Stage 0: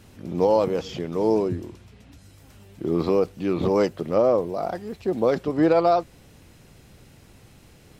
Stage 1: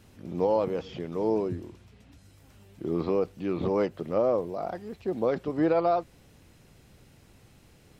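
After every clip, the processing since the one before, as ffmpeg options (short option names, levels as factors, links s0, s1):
-filter_complex "[0:a]acrossover=split=3900[s0][s1];[s1]acompressor=threshold=0.00158:ratio=4:attack=1:release=60[s2];[s0][s2]amix=inputs=2:normalize=0,volume=0.531"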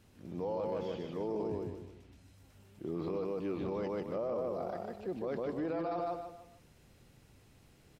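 -filter_complex "[0:a]asplit=2[s0][s1];[s1]aecho=0:1:151|302|453|604:0.708|0.241|0.0818|0.0278[s2];[s0][s2]amix=inputs=2:normalize=0,alimiter=limit=0.0891:level=0:latency=1:release=11,volume=0.422"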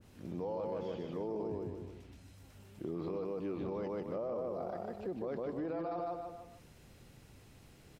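-af "acompressor=threshold=0.00708:ratio=2,adynamicequalizer=threshold=0.001:dfrequency=1600:dqfactor=0.7:tfrequency=1600:tqfactor=0.7:attack=5:release=100:ratio=0.375:range=2:mode=cutabove:tftype=highshelf,volume=1.5"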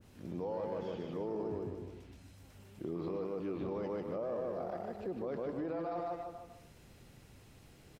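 -filter_complex "[0:a]asplit=2[s0][s1];[s1]adelay=110,highpass=300,lowpass=3400,asoftclip=type=hard:threshold=0.0119,volume=0.355[s2];[s0][s2]amix=inputs=2:normalize=0"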